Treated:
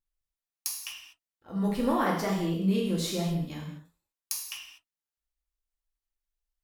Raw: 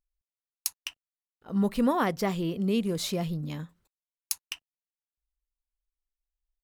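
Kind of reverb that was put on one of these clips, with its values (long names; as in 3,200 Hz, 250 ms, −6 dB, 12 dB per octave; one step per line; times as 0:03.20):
reverb whose tail is shaped and stops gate 270 ms falling, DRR −3.5 dB
level −5 dB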